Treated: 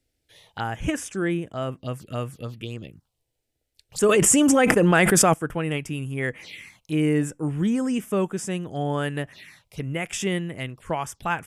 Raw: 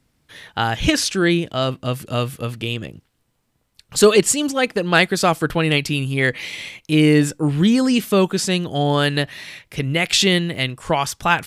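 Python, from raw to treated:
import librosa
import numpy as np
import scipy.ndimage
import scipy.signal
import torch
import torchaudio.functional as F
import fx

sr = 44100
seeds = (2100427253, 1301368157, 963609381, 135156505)

y = fx.peak_eq(x, sr, hz=5000.0, db=-6.0, octaves=0.6, at=(0.76, 1.72))
y = fx.env_phaser(y, sr, low_hz=180.0, high_hz=4200.0, full_db=-19.0)
y = fx.env_flatten(y, sr, amount_pct=100, at=(4.09, 5.34))
y = y * 10.0 ** (-7.5 / 20.0)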